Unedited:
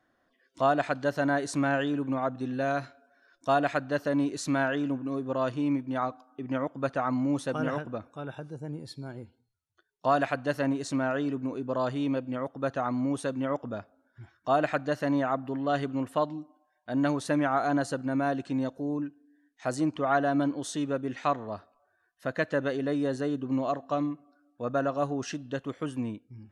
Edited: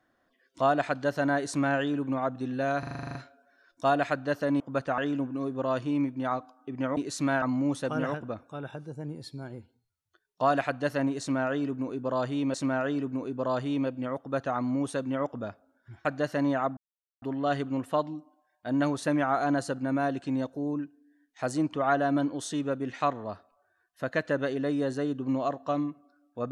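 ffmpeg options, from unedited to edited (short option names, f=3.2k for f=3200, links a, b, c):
-filter_complex "[0:a]asplit=17[a][b][c][d][e][f][g][h][i][j][k][l][m][n][o][p][q];[a]atrim=end=2.832[r];[b]atrim=start=2.788:end=2.832[s];[c]atrim=start=2.788:end=2.832[t];[d]atrim=start=2.788:end=2.832[u];[e]atrim=start=2.788:end=2.832[v];[f]atrim=start=2.788:end=2.832[w];[g]atrim=start=2.788:end=2.832[x];[h]atrim=start=2.788:end=2.832[y];[i]atrim=start=2.788:end=2.832[z];[j]atrim=start=2.788:end=4.242[aa];[k]atrim=start=6.678:end=7.062[ab];[l]atrim=start=4.688:end=6.682[ac];[m]atrim=start=4.238:end=4.692[ad];[n]atrim=start=7.058:end=12.182[ae];[o]atrim=start=10.838:end=14.352[af];[p]atrim=start=14.728:end=15.45,asetpts=PTS-STARTPTS,afade=t=out:st=0.718:d=0.004:c=hsin,apad=pad_dur=0.45[ag];[q]atrim=start=15.45,asetpts=PTS-STARTPTS,afade=t=in:d=0.004:c=hsin[ah];[r][s]acrossfade=d=0.004:c1=hsin:c2=hsin[ai];[ai][t]acrossfade=d=0.004:c1=hsin:c2=hsin[aj];[aj][u]acrossfade=d=0.004:c1=hsin:c2=hsin[ak];[ak][v]acrossfade=d=0.004:c1=hsin:c2=hsin[al];[al][w]acrossfade=d=0.004:c1=hsin:c2=hsin[am];[am][x]acrossfade=d=0.004:c1=hsin:c2=hsin[an];[an][y]acrossfade=d=0.004:c1=hsin:c2=hsin[ao];[ao][z]acrossfade=d=0.004:c1=hsin:c2=hsin[ap];[ap][aa]acrossfade=d=0.004:c1=hsin:c2=hsin[aq];[aq][ab]acrossfade=d=0.004:c1=hsin:c2=hsin[ar];[ar][ac]acrossfade=d=0.004:c1=hsin:c2=hsin[as];[as][ad]acrossfade=d=0.004:c1=hsin:c2=hsin[at];[at][ae]acrossfade=d=0.004:c1=hsin:c2=hsin[au];[au][af]acrossfade=d=0.004:c1=hsin:c2=hsin[av];[ag][ah]concat=n=2:v=0:a=1[aw];[av][aw]acrossfade=d=0.004:c1=hsin:c2=hsin"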